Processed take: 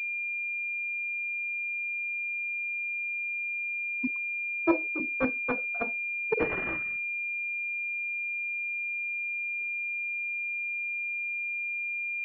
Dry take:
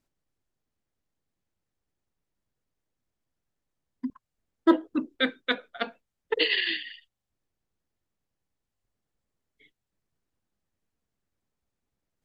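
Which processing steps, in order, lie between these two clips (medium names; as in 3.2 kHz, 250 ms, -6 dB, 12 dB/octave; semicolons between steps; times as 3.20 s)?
4.07–5.00 s: steep high-pass 350 Hz 48 dB/octave; class-D stage that switches slowly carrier 2.4 kHz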